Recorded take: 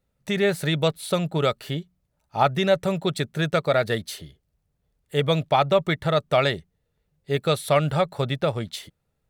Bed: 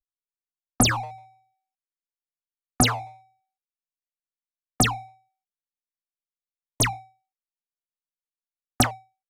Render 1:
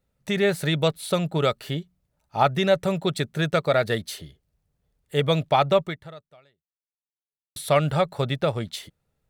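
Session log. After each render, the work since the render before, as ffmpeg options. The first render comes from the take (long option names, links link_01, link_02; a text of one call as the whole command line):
ffmpeg -i in.wav -filter_complex "[0:a]asplit=2[link_01][link_02];[link_01]atrim=end=7.56,asetpts=PTS-STARTPTS,afade=type=out:start_time=5.77:duration=1.79:curve=exp[link_03];[link_02]atrim=start=7.56,asetpts=PTS-STARTPTS,afade=type=in:duration=0.004:curve=hsin[link_04];[link_03][link_04]concat=n=2:v=0:a=1" out.wav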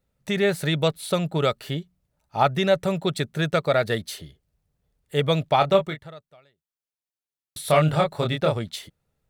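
ffmpeg -i in.wav -filter_complex "[0:a]asettb=1/sr,asplit=3[link_01][link_02][link_03];[link_01]atrim=end=5.574[link_04];[link_02]atrim=start=5.57:end=5.99,asetpts=PTS-STARTPTS,afade=type=in:duration=0.004:curve=qsin,afade=type=out:start_time=0.416:duration=0.004:curve=qsin,asplit=2[link_05][link_06];[link_06]adelay=26,volume=-7.5dB[link_07];[link_05][link_07]amix=inputs=2:normalize=0,atrim=end_sample=18522[link_08];[link_03]atrim=start=5.986[link_09];[link_04][link_08]acrossfade=duration=0.004:curve1=hsin:curve2=qsin[link_10];[link_10][link_09]acrossfade=duration=0.004:curve1=qsin:curve2=hsin,asettb=1/sr,asplit=3[link_11][link_12][link_13];[link_11]atrim=end=7.624[link_14];[link_12]atrim=start=7.62:end=8.57,asetpts=PTS-STARTPTS,afade=type=in:duration=0.004:curve=qsin,afade=type=out:start_time=0.946:duration=0.004:curve=qsin,asplit=2[link_15][link_16];[link_16]adelay=26,volume=-3dB[link_17];[link_15][link_17]amix=inputs=2:normalize=0,atrim=end_sample=41895[link_18];[link_13]atrim=start=8.566[link_19];[link_14][link_18]acrossfade=duration=0.004:curve1=hsin:curve2=qsin[link_20];[link_20][link_19]acrossfade=duration=0.004:curve1=qsin:curve2=hsin" out.wav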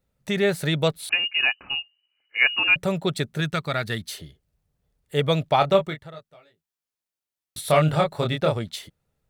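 ffmpeg -i in.wav -filter_complex "[0:a]asettb=1/sr,asplit=3[link_01][link_02][link_03];[link_01]atrim=end=1.094[link_04];[link_02]atrim=start=1.09:end=2.76,asetpts=PTS-STARTPTS,afade=type=in:duration=0.004:curve=qsin,afade=type=out:start_time=1.666:duration=0.004:curve=qsin,lowpass=frequency=2600:width_type=q:width=0.5098,lowpass=frequency=2600:width_type=q:width=0.6013,lowpass=frequency=2600:width_type=q:width=0.9,lowpass=frequency=2600:width_type=q:width=2.563,afreqshift=-3000[link_05];[link_03]atrim=start=2.756[link_06];[link_04][link_05]acrossfade=duration=0.004:curve1=hsin:curve2=qsin[link_07];[link_07][link_06]acrossfade=duration=0.004:curve1=qsin:curve2=hsin,asettb=1/sr,asplit=3[link_08][link_09][link_10];[link_08]atrim=end=3.404[link_11];[link_09]atrim=start=3.4:end=4.08,asetpts=PTS-STARTPTS,afade=type=in:duration=0.004:curve=qsin,afade=type=out:start_time=0.676:duration=0.004:curve=qsin,equalizer=frequency=540:width_type=o:width=1.1:gain=-11[link_12];[link_10]atrim=start=4.076[link_13];[link_11][link_12]acrossfade=duration=0.004:curve1=hsin:curve2=qsin[link_14];[link_14][link_13]acrossfade=duration=0.004:curve1=qsin:curve2=hsin,asettb=1/sr,asplit=3[link_15][link_16][link_17];[link_15]atrim=end=6.124[link_18];[link_16]atrim=start=6.12:end=7.61,asetpts=PTS-STARTPTS,afade=type=in:duration=0.004:curve=qsin,afade=type=out:start_time=1.486:duration=0.004:curve=qsin,asplit=2[link_19][link_20];[link_20]adelay=18,volume=-2dB[link_21];[link_19][link_21]amix=inputs=2:normalize=0,atrim=end_sample=65709[link_22];[link_17]atrim=start=7.606[link_23];[link_18][link_22]acrossfade=duration=0.004:curve1=hsin:curve2=qsin[link_24];[link_24][link_23]acrossfade=duration=0.004:curve1=qsin:curve2=hsin" out.wav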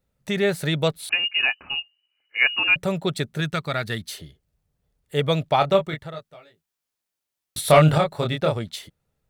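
ffmpeg -i in.wav -filter_complex "[0:a]asettb=1/sr,asplit=3[link_01][link_02][link_03];[link_01]atrim=end=1.224[link_04];[link_02]atrim=start=1.22:end=1.8,asetpts=PTS-STARTPTS,afade=type=in:duration=0.004:curve=qsin,afade=type=out:start_time=0.576:duration=0.004:curve=qsin,asplit=2[link_05][link_06];[link_06]adelay=12,volume=-10dB[link_07];[link_05][link_07]amix=inputs=2:normalize=0,atrim=end_sample=25578[link_08];[link_03]atrim=start=1.796[link_09];[link_04][link_08]acrossfade=duration=0.004:curve1=hsin:curve2=qsin[link_10];[link_10][link_09]acrossfade=duration=0.004:curve1=qsin:curve2=hsin,asettb=1/sr,asplit=3[link_11][link_12][link_13];[link_11]atrim=end=5.934[link_14];[link_12]atrim=start=5.93:end=7.98,asetpts=PTS-STARTPTS,afade=type=in:duration=0.004:curve=qsin,afade=type=out:start_time=2.046:duration=0.004:curve=qsin,acontrast=34[link_15];[link_13]atrim=start=7.976[link_16];[link_14][link_15]acrossfade=duration=0.004:curve1=hsin:curve2=qsin[link_17];[link_17][link_16]acrossfade=duration=0.004:curve1=qsin:curve2=hsin" out.wav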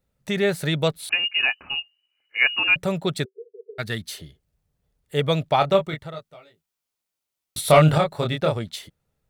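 ffmpeg -i in.wav -filter_complex "[0:a]asplit=3[link_01][link_02][link_03];[link_01]afade=type=out:start_time=3.24:duration=0.02[link_04];[link_02]asuperpass=centerf=430:order=12:qfactor=4.4,afade=type=in:start_time=3.24:duration=0.02,afade=type=out:start_time=3.78:duration=0.02[link_05];[link_03]afade=type=in:start_time=3.78:duration=0.02[link_06];[link_04][link_05][link_06]amix=inputs=3:normalize=0,asettb=1/sr,asplit=3[link_07][link_08][link_09];[link_07]atrim=end=5.864[link_10];[link_08]atrim=start=5.86:end=7.8,asetpts=PTS-STARTPTS,afade=type=in:duration=0.004:curve=qsin,afade=type=out:start_time=1.936:duration=0.004:curve=qsin,bandreject=frequency=1700:width=12[link_11];[link_09]atrim=start=7.796[link_12];[link_10][link_11]acrossfade=duration=0.004:curve1=hsin:curve2=qsin[link_13];[link_13][link_12]acrossfade=duration=0.004:curve1=qsin:curve2=hsin" out.wav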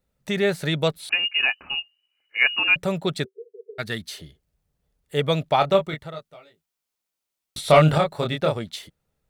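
ffmpeg -i in.wav -filter_complex "[0:a]acrossover=split=7600[link_01][link_02];[link_02]acompressor=threshold=-44dB:ratio=4:attack=1:release=60[link_03];[link_01][link_03]amix=inputs=2:normalize=0,equalizer=frequency=110:width=2.3:gain=-4.5" out.wav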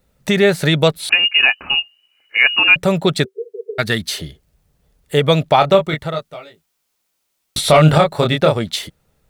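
ffmpeg -i in.wav -filter_complex "[0:a]asplit=2[link_01][link_02];[link_02]acompressor=threshold=-29dB:ratio=6,volume=3dB[link_03];[link_01][link_03]amix=inputs=2:normalize=0,alimiter=level_in=5.5dB:limit=-1dB:release=50:level=0:latency=1" out.wav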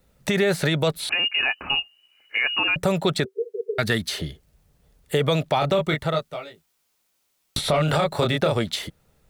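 ffmpeg -i in.wav -filter_complex "[0:a]alimiter=limit=-8.5dB:level=0:latency=1:release=20,acrossover=split=420|2000|4700[link_01][link_02][link_03][link_04];[link_01]acompressor=threshold=-23dB:ratio=4[link_05];[link_02]acompressor=threshold=-21dB:ratio=4[link_06];[link_03]acompressor=threshold=-31dB:ratio=4[link_07];[link_04]acompressor=threshold=-35dB:ratio=4[link_08];[link_05][link_06][link_07][link_08]amix=inputs=4:normalize=0" out.wav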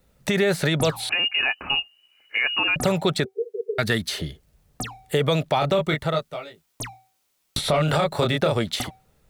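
ffmpeg -i in.wav -i bed.wav -filter_complex "[1:a]volume=-11.5dB[link_01];[0:a][link_01]amix=inputs=2:normalize=0" out.wav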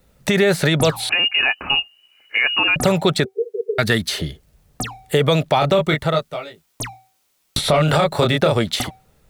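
ffmpeg -i in.wav -af "volume=5dB" out.wav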